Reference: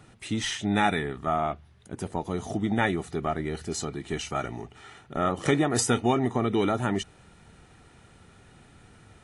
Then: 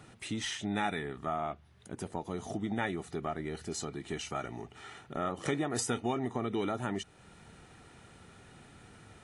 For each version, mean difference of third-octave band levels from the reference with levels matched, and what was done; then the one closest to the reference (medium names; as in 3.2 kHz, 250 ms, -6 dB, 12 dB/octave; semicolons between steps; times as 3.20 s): 3.0 dB: bass shelf 74 Hz -7.5 dB; compression 1.5:1, threshold -44 dBFS, peak gain reduction 9.5 dB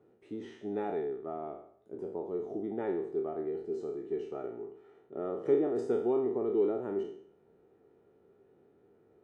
11.0 dB: spectral sustain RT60 0.61 s; band-pass filter 410 Hz, Q 4.3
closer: first